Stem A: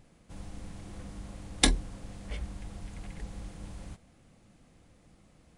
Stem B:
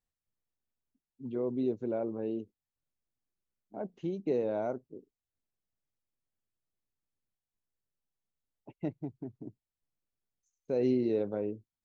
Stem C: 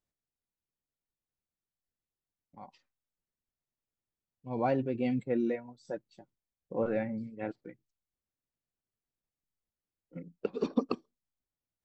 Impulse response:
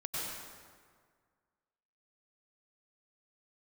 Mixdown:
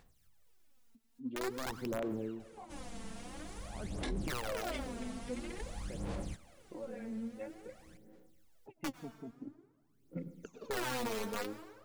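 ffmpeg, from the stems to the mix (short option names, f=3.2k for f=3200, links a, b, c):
-filter_complex "[0:a]lowshelf=f=180:g=-10,adelay=2400,volume=0.5dB[a];[1:a]acompressor=mode=upward:threshold=-50dB:ratio=2.5,aeval=exprs='(mod(16.8*val(0)+1,2)-1)/16.8':c=same,volume=-7dB,asplit=2[b][c];[c]volume=-16.5dB[d];[2:a]acompressor=threshold=-39dB:ratio=6,volume=-8.5dB,asplit=2[e][f];[f]volume=-8dB[g];[3:a]atrim=start_sample=2205[h];[d][g]amix=inputs=2:normalize=0[i];[i][h]afir=irnorm=-1:irlink=0[j];[a][b][e][j]amix=inputs=4:normalize=0,aphaser=in_gain=1:out_gain=1:delay=4.5:decay=0.7:speed=0.49:type=sinusoidal,alimiter=level_in=5.5dB:limit=-24dB:level=0:latency=1:release=21,volume=-5.5dB"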